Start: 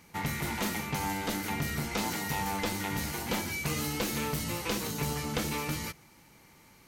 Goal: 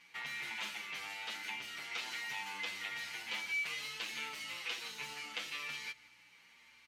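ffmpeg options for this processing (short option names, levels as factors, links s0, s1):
-filter_complex "[0:a]asplit=2[s0][s1];[s1]acompressor=threshold=0.01:ratio=6,volume=1.12[s2];[s0][s2]amix=inputs=2:normalize=0,aeval=exprs='val(0)+0.00447*(sin(2*PI*60*n/s)+sin(2*PI*2*60*n/s)/2+sin(2*PI*3*60*n/s)/3+sin(2*PI*4*60*n/s)/4+sin(2*PI*5*60*n/s)/5)':c=same,bandpass=f=2700:t=q:w=1.7:csg=0,asplit=2[s3][s4];[s4]adelay=174.9,volume=0.112,highshelf=f=4000:g=-3.94[s5];[s3][s5]amix=inputs=2:normalize=0,asplit=2[s6][s7];[s7]adelay=7.9,afreqshift=-1.1[s8];[s6][s8]amix=inputs=2:normalize=1"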